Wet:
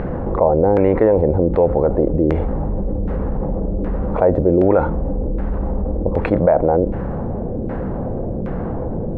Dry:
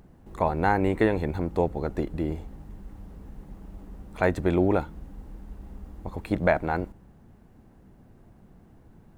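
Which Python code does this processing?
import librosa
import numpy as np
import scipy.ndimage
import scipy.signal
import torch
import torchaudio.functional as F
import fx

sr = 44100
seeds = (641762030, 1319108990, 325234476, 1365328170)

y = fx.peak_eq(x, sr, hz=520.0, db=11.0, octaves=0.43)
y = fx.filter_lfo_lowpass(y, sr, shape='saw_down', hz=1.3, low_hz=390.0, high_hz=1900.0, q=1.3)
y = fx.env_flatten(y, sr, amount_pct=70)
y = F.gain(torch.from_numpy(y), -1.0).numpy()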